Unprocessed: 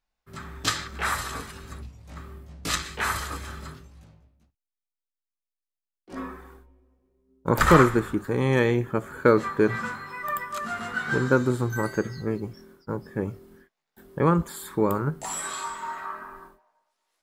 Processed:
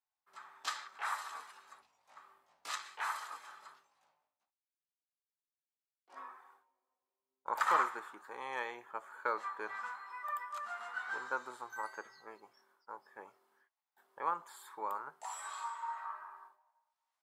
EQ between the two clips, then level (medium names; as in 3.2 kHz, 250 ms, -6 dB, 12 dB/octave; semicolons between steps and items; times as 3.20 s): band-pass filter 880 Hz, Q 2.7; differentiator; +12.0 dB